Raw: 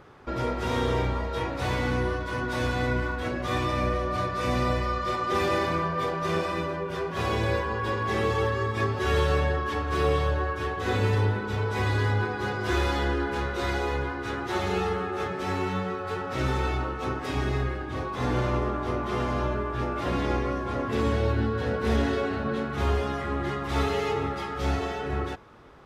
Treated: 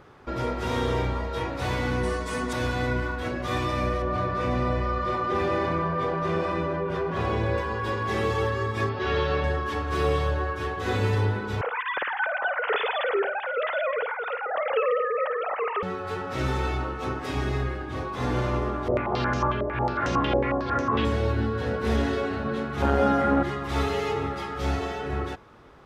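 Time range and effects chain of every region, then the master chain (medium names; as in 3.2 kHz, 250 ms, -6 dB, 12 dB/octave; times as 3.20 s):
2.03–2.53 s: peaking EQ 8.3 kHz +14.5 dB 0.8 oct + comb 4.5 ms, depth 75%
4.02–7.58 s: low-pass 1.7 kHz 6 dB/octave + level flattener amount 50%
8.89–9.44 s: low-pass 4.8 kHz 24 dB/octave + bass shelf 70 Hz -10 dB
11.61–15.83 s: formants replaced by sine waves + flutter echo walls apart 9.1 m, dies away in 0.29 s
18.88–21.05 s: flutter echo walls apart 6.8 m, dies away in 0.27 s + step-sequenced low-pass 11 Hz 580–6200 Hz
22.82–23.43 s: small resonant body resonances 250/540/760/1400 Hz, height 14 dB, ringing for 30 ms + transformer saturation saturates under 370 Hz
whole clip: none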